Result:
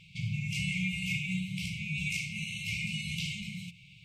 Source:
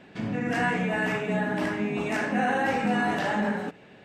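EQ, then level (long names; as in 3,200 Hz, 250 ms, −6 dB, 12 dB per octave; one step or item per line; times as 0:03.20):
linear-phase brick-wall band-stop 180–2,100 Hz
+3.5 dB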